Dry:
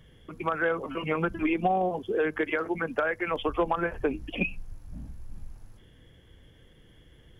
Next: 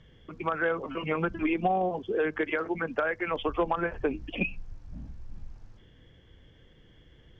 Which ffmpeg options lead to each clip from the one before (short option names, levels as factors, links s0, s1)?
-af "lowpass=f=6300:w=0.5412,lowpass=f=6300:w=1.3066,volume=0.891"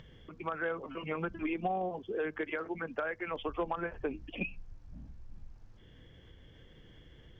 -af "acompressor=mode=upward:threshold=0.0112:ratio=2.5,volume=0.447"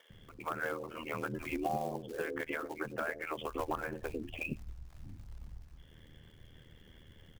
-filter_complex "[0:a]acrusher=bits=5:mode=log:mix=0:aa=0.000001,acrossover=split=440[s0][s1];[s0]adelay=100[s2];[s2][s1]amix=inputs=2:normalize=0,aeval=exprs='val(0)*sin(2*PI*39*n/s)':c=same,volume=1.33"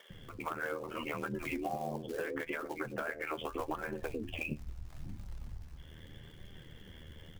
-af "acompressor=threshold=0.00891:ratio=3,flanger=delay=5:depth=8.4:regen=57:speed=0.77:shape=sinusoidal,volume=2.99"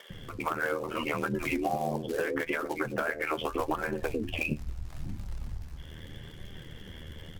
-af "volume=2.24" -ar 48000 -c:a sbc -b:a 128k